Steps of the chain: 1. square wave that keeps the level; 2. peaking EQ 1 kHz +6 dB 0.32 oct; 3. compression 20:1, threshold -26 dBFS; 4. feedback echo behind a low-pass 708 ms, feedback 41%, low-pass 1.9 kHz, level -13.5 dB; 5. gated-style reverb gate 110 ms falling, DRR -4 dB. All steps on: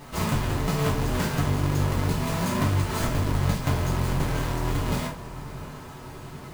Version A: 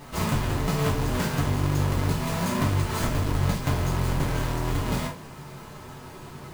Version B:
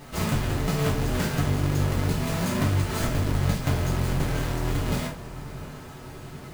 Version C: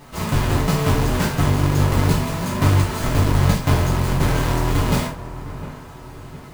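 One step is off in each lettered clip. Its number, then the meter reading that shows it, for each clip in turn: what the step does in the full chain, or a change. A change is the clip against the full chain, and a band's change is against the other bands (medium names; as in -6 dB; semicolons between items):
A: 4, momentary loudness spread change +3 LU; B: 2, 1 kHz band -3.0 dB; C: 3, mean gain reduction 4.5 dB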